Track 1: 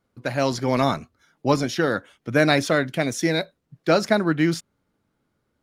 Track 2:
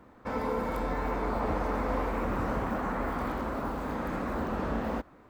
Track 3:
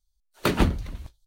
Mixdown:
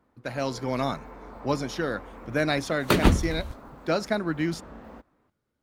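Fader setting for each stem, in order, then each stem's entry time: -7.0 dB, -13.0 dB, +2.0 dB; 0.00 s, 0.00 s, 2.45 s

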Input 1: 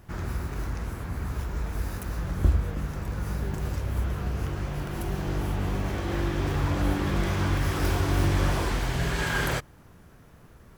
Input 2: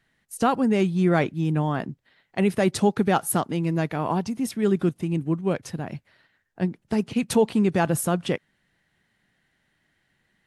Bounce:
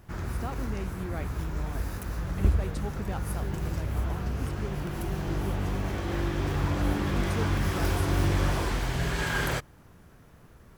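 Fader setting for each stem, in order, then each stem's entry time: -1.5 dB, -17.0 dB; 0.00 s, 0.00 s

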